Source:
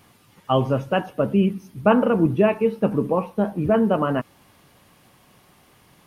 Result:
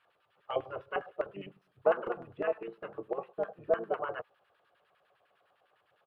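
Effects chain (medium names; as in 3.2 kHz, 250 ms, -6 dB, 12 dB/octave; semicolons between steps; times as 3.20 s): static phaser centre 1.4 kHz, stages 8; LFO band-pass square 9.9 Hz 780–1800 Hz; harmony voices -5 st -4 dB; trim -4.5 dB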